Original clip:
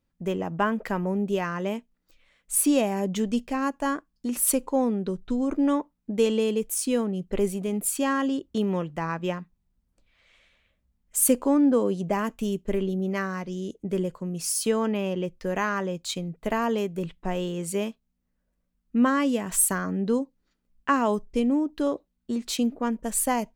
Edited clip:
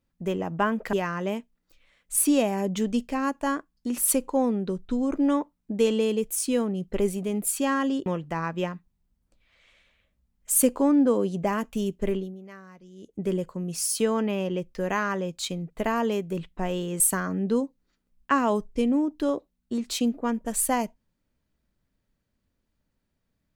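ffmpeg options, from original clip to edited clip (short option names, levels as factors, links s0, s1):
-filter_complex "[0:a]asplit=6[s0][s1][s2][s3][s4][s5];[s0]atrim=end=0.932[s6];[s1]atrim=start=1.318:end=8.452[s7];[s2]atrim=start=8.718:end=13.09,asetpts=PTS-STARTPTS,afade=t=out:st=4.082:d=0.29:c=qua:silence=0.149624[s8];[s3]atrim=start=13.09:end=13.56,asetpts=PTS-STARTPTS,volume=0.15[s9];[s4]atrim=start=13.56:end=17.662,asetpts=PTS-STARTPTS,afade=t=in:d=0.29:c=qua:silence=0.149624[s10];[s5]atrim=start=19.578[s11];[s6][s7]acrossfade=d=0.004:c1=hsin:c2=hsin[s12];[s8][s9][s10]concat=n=3:v=0:a=1[s13];[s12][s13]acrossfade=d=0.004:c1=hsin:c2=hsin[s14];[s14][s11]acrossfade=d=0.004:c1=hsin:c2=hsin"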